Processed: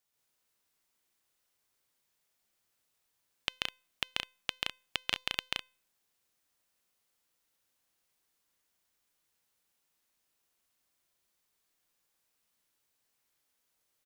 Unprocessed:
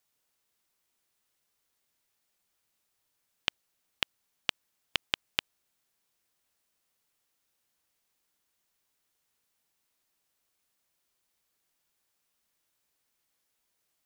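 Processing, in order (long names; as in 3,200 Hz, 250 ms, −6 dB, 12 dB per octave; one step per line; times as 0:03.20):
tuned comb filter 510 Hz, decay 0.41 s, mix 40%
loudspeakers that aren't time-aligned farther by 47 metres −1 dB, 59 metres −3 dB, 70 metres −11 dB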